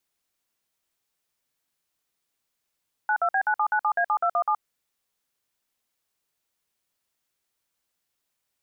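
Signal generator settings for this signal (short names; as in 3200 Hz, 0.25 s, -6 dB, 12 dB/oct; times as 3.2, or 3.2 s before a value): DTMF "92B9797A7217", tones 73 ms, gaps 53 ms, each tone -22.5 dBFS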